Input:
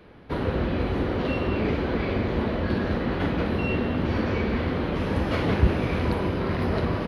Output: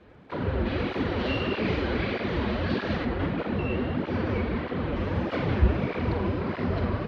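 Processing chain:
0:00.66–0:03.05: high-shelf EQ 2,200 Hz +12 dB
surface crackle 280 per second −54 dBFS
high-frequency loss of the air 120 metres
flutter between parallel walls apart 7.7 metres, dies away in 0.28 s
through-zero flanger with one copy inverted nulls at 1.6 Hz, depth 7.6 ms

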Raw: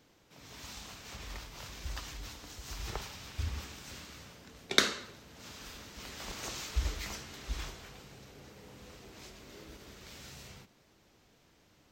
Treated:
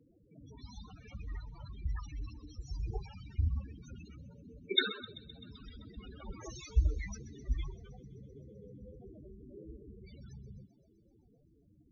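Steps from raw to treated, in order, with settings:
spectral peaks only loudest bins 8
tape wow and flutter 22 cents
delay with a high-pass on its return 129 ms, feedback 74%, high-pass 4,100 Hz, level −14 dB
level +5 dB

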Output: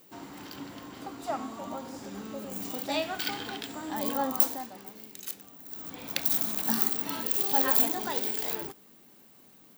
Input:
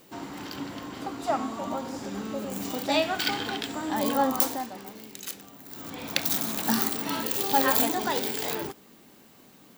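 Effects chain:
high-shelf EQ 12,000 Hz +9 dB
level −6 dB

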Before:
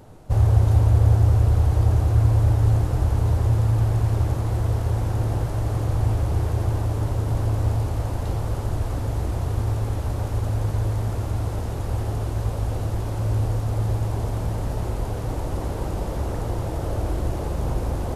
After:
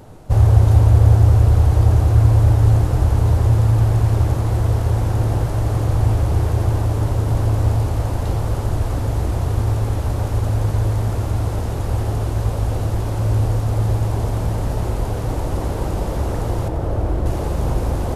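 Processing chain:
0:16.68–0:17.26: high-shelf EQ 2,700 Hz −11 dB
level +5 dB

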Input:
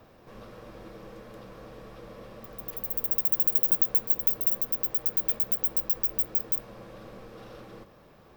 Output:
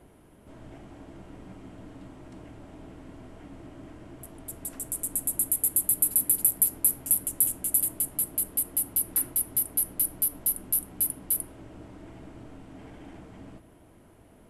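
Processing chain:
wrong playback speed 78 rpm record played at 45 rpm

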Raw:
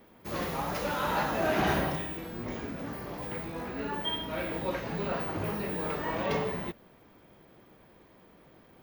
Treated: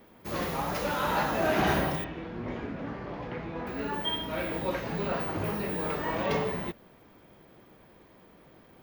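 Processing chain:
0:02.04–0:03.67: low-pass filter 3,100 Hz 12 dB per octave
level +1.5 dB

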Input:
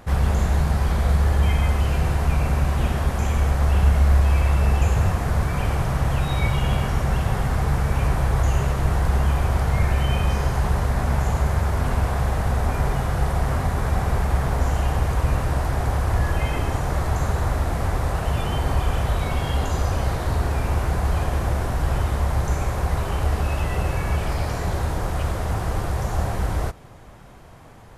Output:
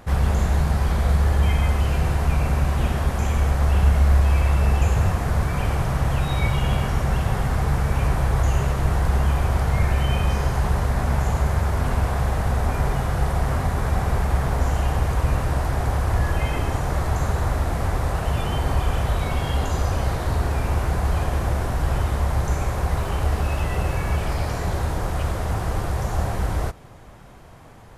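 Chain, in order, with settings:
0:22.89–0:24.23: surface crackle 240 per second −41 dBFS

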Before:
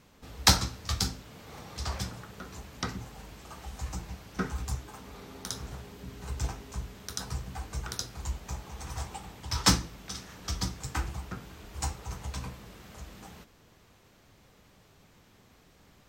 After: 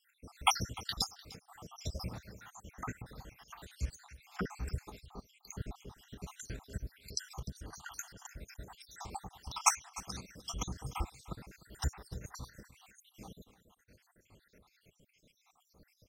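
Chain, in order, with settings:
time-frequency cells dropped at random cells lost 75%
on a send: single-tap delay 300 ms −18.5 dB
on the sum: shaped tremolo saw up 9.6 Hz, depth 55%
0:05.06–0:05.98: spectral tilt −1.5 dB per octave
level +2 dB

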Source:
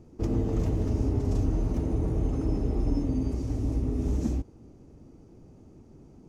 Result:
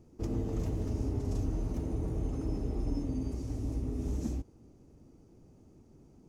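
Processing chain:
high-shelf EQ 5,700 Hz +7 dB
level −6.5 dB

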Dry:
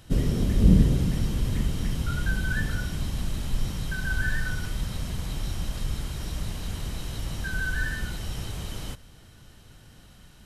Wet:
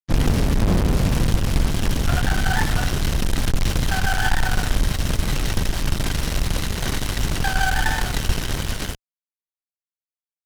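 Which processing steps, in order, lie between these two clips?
fuzz pedal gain 32 dB, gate −38 dBFS
power curve on the samples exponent 2
pitch-shifted copies added −12 semitones −1 dB

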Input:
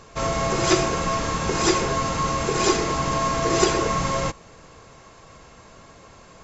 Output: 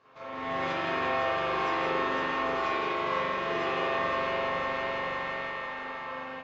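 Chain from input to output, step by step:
high-pass filter 760 Hz 6 dB per octave
echo machine with several playback heads 169 ms, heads first and third, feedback 55%, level −8 dB
downward compressor 6 to 1, threshold −35 dBFS, peak gain reduction 16.5 dB
high-frequency loss of the air 300 metres
resonators tuned to a chord F2 fifth, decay 0.26 s
spring reverb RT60 2 s, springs 42 ms, chirp 50 ms, DRR −10 dB
automatic gain control gain up to 12.5 dB

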